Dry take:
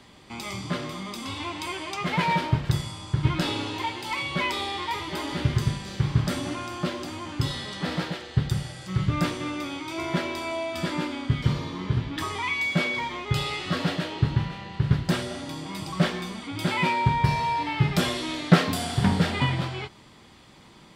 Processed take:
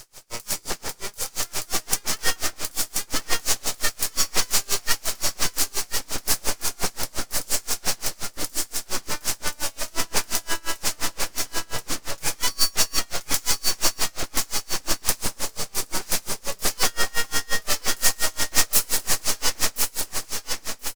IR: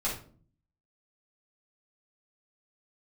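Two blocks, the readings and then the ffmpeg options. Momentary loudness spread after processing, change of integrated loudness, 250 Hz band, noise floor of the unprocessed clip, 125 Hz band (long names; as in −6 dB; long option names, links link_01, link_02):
8 LU, +2.5 dB, −11.5 dB, −51 dBFS, −16.5 dB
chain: -filter_complex "[0:a]highpass=frequency=120:width=0.5412,highpass=frequency=120:width=1.3066,acrossover=split=440[link_01][link_02];[link_01]acompressor=threshold=-33dB:ratio=6[link_03];[link_03][link_02]amix=inputs=2:normalize=0,aeval=exprs='abs(val(0))':channel_layout=same,aexciter=amount=4:drive=6.2:freq=4900,asoftclip=type=tanh:threshold=-13dB,aecho=1:1:1030|2060|3090|4120|5150:0.668|0.254|0.0965|0.0367|0.0139,aeval=exprs='val(0)*pow(10,-31*(0.5-0.5*cos(2*PI*5.7*n/s))/20)':channel_layout=same,volume=9dB"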